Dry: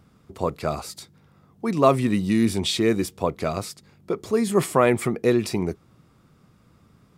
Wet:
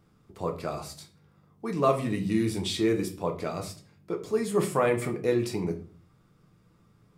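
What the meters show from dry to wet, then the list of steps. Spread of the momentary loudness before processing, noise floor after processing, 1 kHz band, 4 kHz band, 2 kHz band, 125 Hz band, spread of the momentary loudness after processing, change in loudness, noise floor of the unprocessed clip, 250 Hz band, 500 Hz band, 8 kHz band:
13 LU, -63 dBFS, -6.0 dB, -7.0 dB, -6.0 dB, -5.0 dB, 13 LU, -5.5 dB, -58 dBFS, -6.0 dB, -5.0 dB, -6.5 dB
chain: simulated room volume 33 m³, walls mixed, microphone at 0.4 m; trim -8 dB

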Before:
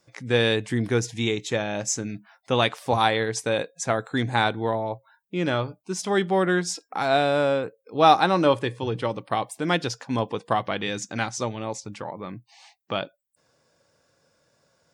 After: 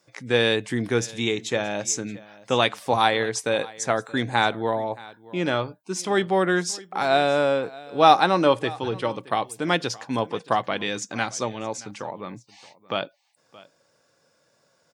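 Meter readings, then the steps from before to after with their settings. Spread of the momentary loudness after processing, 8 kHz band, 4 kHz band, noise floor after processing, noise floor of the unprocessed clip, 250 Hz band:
12 LU, +1.5 dB, +1.5 dB, -66 dBFS, -70 dBFS, -0.5 dB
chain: high-pass 100 Hz; bass shelf 190 Hz -5 dB; delay 623 ms -21 dB; trim +1.5 dB

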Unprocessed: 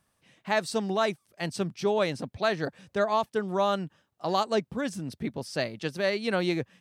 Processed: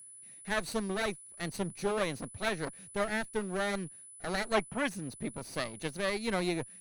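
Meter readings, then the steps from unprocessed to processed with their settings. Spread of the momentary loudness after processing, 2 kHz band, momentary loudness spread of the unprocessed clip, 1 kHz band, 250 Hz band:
8 LU, -2.0 dB, 8 LU, -7.5 dB, -4.5 dB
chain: comb filter that takes the minimum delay 0.47 ms; time-frequency box 4.54–4.88 s, 560–3400 Hz +8 dB; whistle 10 kHz -45 dBFS; trim -4 dB

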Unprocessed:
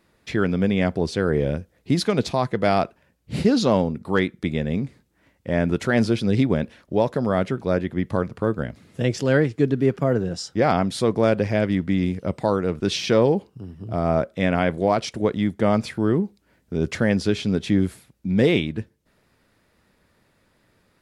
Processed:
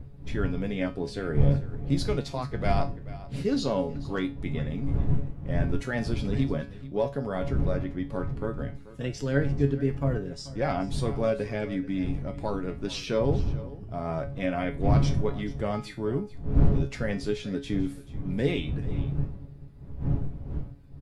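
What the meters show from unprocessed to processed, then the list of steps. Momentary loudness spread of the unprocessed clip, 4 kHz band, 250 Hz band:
8 LU, -9.0 dB, -8.0 dB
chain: coarse spectral quantiser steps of 15 dB; wind noise 110 Hz -21 dBFS; feedback comb 140 Hz, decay 0.28 s, harmonics all, mix 80%; on a send: delay 435 ms -17.5 dB

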